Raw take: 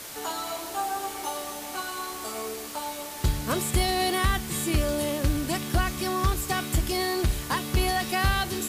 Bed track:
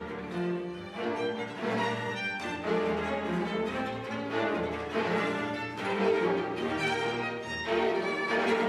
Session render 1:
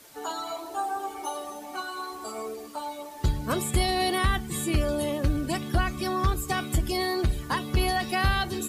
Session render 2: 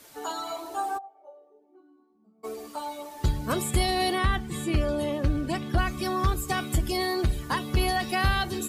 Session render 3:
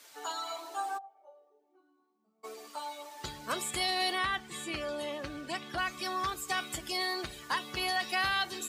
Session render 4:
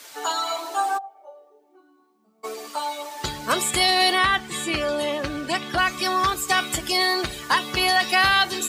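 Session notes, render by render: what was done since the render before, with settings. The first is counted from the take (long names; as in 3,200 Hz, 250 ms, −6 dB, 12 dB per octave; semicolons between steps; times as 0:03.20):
broadband denoise 13 dB, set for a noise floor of −37 dBFS
0:00.97–0:02.43: resonant band-pass 790 Hz → 170 Hz, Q 19; 0:04.13–0:05.78: high-shelf EQ 6,600 Hz −11.5 dB
high-pass filter 1,300 Hz 6 dB per octave; parametric band 12,000 Hz −8.5 dB 0.72 octaves
level +12 dB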